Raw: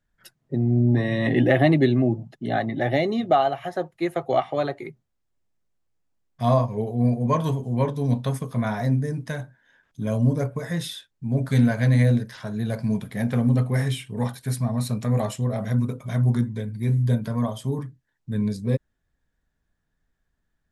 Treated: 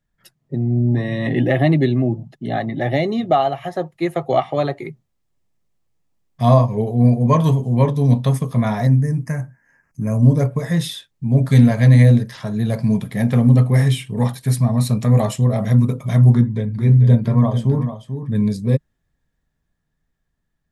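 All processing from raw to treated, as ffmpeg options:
ffmpeg -i in.wav -filter_complex "[0:a]asettb=1/sr,asplit=3[link_01][link_02][link_03];[link_01]atrim=end=8.874[link_04];[link_02]atrim=start=8.87:end=10.23,asetpts=PTS-STARTPTS,afade=type=in:duration=0.004:curve=qsin,afade=type=out:start_time=1.356:duration=0.004:curve=qsin,asuperstop=centerf=3500:order=4:qfactor=1.1,equalizer=frequency=500:width_type=o:width=1.7:gain=-5.5[link_05];[link_03]atrim=start=10.226[link_06];[link_04][link_05]acrossfade=duration=0.004:curve1=hsin:curve2=qsin[link_07];[link_07][link_06]acrossfade=duration=0.004:curve1=qsin:curve2=hsin,asettb=1/sr,asplit=3[link_08][link_09][link_10];[link_08]atrim=end=16.344[link_11];[link_09]atrim=start=16.34:end=18.35,asetpts=PTS-STARTPTS,afade=type=in:duration=0.004:curve=qsin,afade=type=out:start_time=2.006:duration=0.004:curve=qsin,lowpass=frequency=2500:poles=1,aecho=1:1:441:0.355,atrim=end_sample=88641[link_12];[link_10]atrim=start=18.346[link_13];[link_11][link_12]acrossfade=duration=0.004:curve1=hsin:curve2=qsin[link_14];[link_14][link_13]acrossfade=duration=0.004:curve1=qsin:curve2=hsin,equalizer=frequency=150:width=2.1:gain=5,bandreject=frequency=1500:width=9.3,dynaudnorm=framelen=460:gausssize=13:maxgain=11.5dB" out.wav

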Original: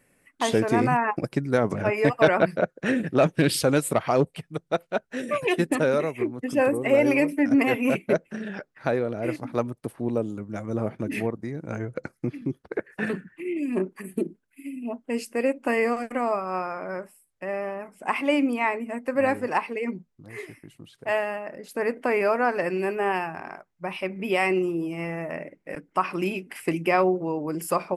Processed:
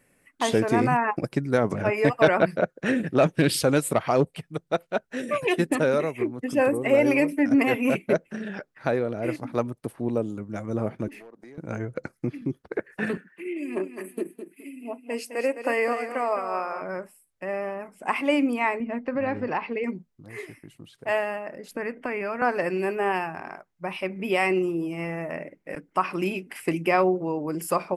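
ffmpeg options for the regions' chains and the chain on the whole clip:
ffmpeg -i in.wav -filter_complex "[0:a]asettb=1/sr,asplit=3[link_01][link_02][link_03];[link_01]atrim=end=11.084[link_04];[link_02]atrim=start=11.08:end=11.58,asetpts=PTS-STARTPTS,afade=type=in:duration=0.004:curve=qsin,afade=type=out:start_time=0.496:duration=0.004:curve=qsin,highpass=330,acompressor=threshold=-42dB:ratio=6:attack=3.2:release=140:knee=1:detection=peak,aeval=exprs='clip(val(0),-1,0.00891)':channel_layout=same[link_05];[link_03]atrim=start=11.576[link_06];[link_04][link_05]acrossfade=duration=0.004:curve1=hsin:curve2=qsin[link_07];[link_07][link_06]acrossfade=duration=0.004:curve1=qsin:curve2=hsin,asettb=1/sr,asplit=3[link_08][link_09][link_10];[link_08]atrim=end=13.174[link_11];[link_09]atrim=start=13.17:end=16.82,asetpts=PTS-STARTPTS,afade=type=in:duration=0.004:curve=qsin,afade=type=out:start_time=3.646:duration=0.004:curve=qsin,highpass=340,bandreject=frequency=7300:width=12,aecho=1:1:210|420|630:0.335|0.0871|0.0226,atrim=end_sample=160965[link_12];[link_10]atrim=start=16.816[link_13];[link_11][link_12]acrossfade=duration=0.004:curve1=hsin:curve2=qsin[link_14];[link_14][link_13]acrossfade=duration=0.004:curve1=qsin:curve2=hsin,asettb=1/sr,asplit=3[link_15][link_16][link_17];[link_15]atrim=end=18.804[link_18];[link_16]atrim=start=18.8:end=19.84,asetpts=PTS-STARTPTS,afade=type=in:duration=0.004:curve=qsin,afade=type=out:start_time=1.036:duration=0.004:curve=qsin,lowshelf=frequency=190:gain=8.5,acompressor=threshold=-23dB:ratio=3:attack=3.2:release=140:knee=1:detection=peak,lowpass=frequency=4600:width=0.5412,lowpass=frequency=4600:width=1.3066[link_19];[link_17]atrim=start=19.836[link_20];[link_18][link_19]acrossfade=duration=0.004:curve1=hsin:curve2=qsin[link_21];[link_21][link_20]acrossfade=duration=0.004:curve1=qsin:curve2=hsin,asettb=1/sr,asplit=3[link_22][link_23][link_24];[link_22]atrim=end=21.714[link_25];[link_23]atrim=start=21.71:end=22.42,asetpts=PTS-STARTPTS,afade=type=in:duration=0.004:curve=qsin,afade=type=out:start_time=0.706:duration=0.004:curve=qsin,bass=frequency=250:gain=13,treble=frequency=4000:gain=-10,bandreject=frequency=4000:width=10,acrossover=split=360|1400[link_26][link_27][link_28];[link_26]acompressor=threshold=-39dB:ratio=4[link_29];[link_27]acompressor=threshold=-33dB:ratio=4[link_30];[link_28]acompressor=threshold=-33dB:ratio=4[link_31];[link_29][link_30][link_31]amix=inputs=3:normalize=0[link_32];[link_24]atrim=start=22.416[link_33];[link_25][link_32]acrossfade=duration=0.004:curve1=hsin:curve2=qsin[link_34];[link_34][link_33]acrossfade=duration=0.004:curve1=qsin:curve2=hsin" out.wav

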